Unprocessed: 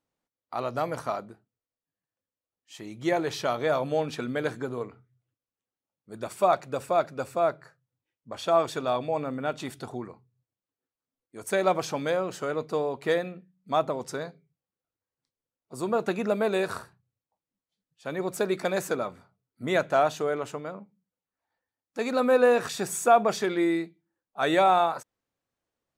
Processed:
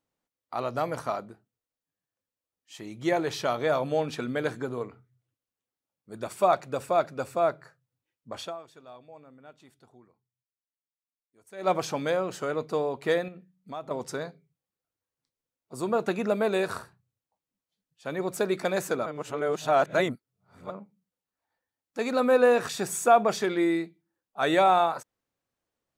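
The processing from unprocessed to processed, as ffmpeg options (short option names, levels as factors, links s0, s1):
-filter_complex "[0:a]asettb=1/sr,asplit=3[s0][s1][s2];[s0]atrim=end=13.284[s3];[s1]atrim=start=13.28:end=13.91,asetpts=PTS-STARTPTS,afade=t=in:d=0.004:c=qsin,afade=t=out:st=0.626:d=0.004:c=qsin,acompressor=threshold=0.00708:ratio=2:attack=3.2:release=140:knee=1:detection=peak[s4];[s2]atrim=start=13.906[s5];[s3][s4]acrossfade=d=0.004:c1=hsin:c2=qsin[s6];[s6][s5]acrossfade=d=0.004:c1=qsin:c2=hsin,asplit=5[s7][s8][s9][s10][s11];[s7]atrim=end=8.58,asetpts=PTS-STARTPTS,afade=t=out:st=8.41:d=0.17:c=qua:silence=0.0944061[s12];[s8]atrim=start=8.58:end=11.53,asetpts=PTS-STARTPTS,volume=0.0944[s13];[s9]atrim=start=11.53:end=19.062,asetpts=PTS-STARTPTS,afade=t=in:d=0.17:c=qua:silence=0.0944061[s14];[s10]atrim=start=19.058:end=20.702,asetpts=PTS-STARTPTS,areverse[s15];[s11]atrim=start=20.698[s16];[s12][s13][s14]concat=n=3:v=0:a=1[s17];[s17][s15]acrossfade=d=0.004:c1=hsin:c2=hsin[s18];[s18][s16]acrossfade=d=0.004:c1=hsin:c2=hsin"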